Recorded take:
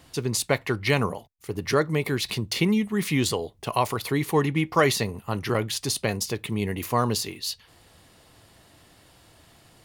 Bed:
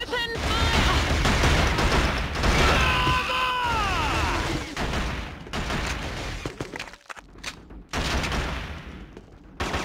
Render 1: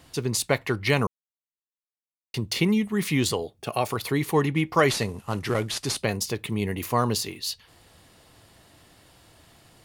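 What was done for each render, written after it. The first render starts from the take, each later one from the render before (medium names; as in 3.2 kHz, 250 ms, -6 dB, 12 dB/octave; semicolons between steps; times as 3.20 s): 1.07–2.34 s: mute; 3.43–3.92 s: comb of notches 1 kHz; 4.88–5.98 s: CVSD coder 64 kbps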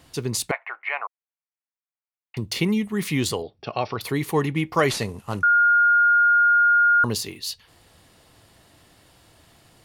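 0.51–2.37 s: elliptic band-pass 690–2400 Hz, stop band 70 dB; 3.42–4.01 s: Chebyshev low-pass 5.8 kHz, order 10; 5.43–7.04 s: bleep 1.42 kHz -13.5 dBFS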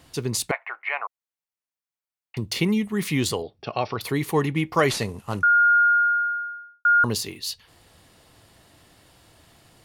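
5.75–6.85 s: studio fade out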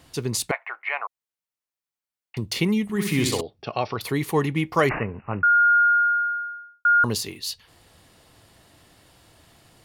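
2.83–3.41 s: flutter echo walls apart 10.9 m, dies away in 0.71 s; 4.89–5.80 s: careless resampling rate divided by 8×, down none, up filtered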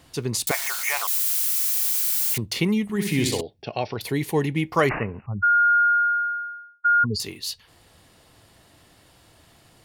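0.47–2.38 s: zero-crossing glitches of -17 dBFS; 2.96–4.68 s: peaking EQ 1.2 kHz -13.5 dB 0.37 oct; 5.26–7.20 s: spectral contrast enhancement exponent 3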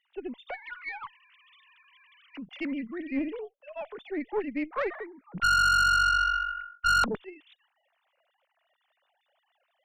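formants replaced by sine waves; valve stage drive 20 dB, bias 0.55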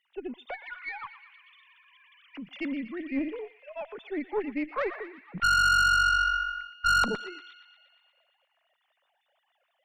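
band-passed feedback delay 118 ms, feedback 73%, band-pass 2.6 kHz, level -12 dB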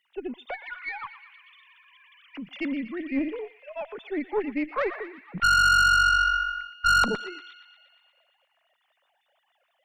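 trim +3 dB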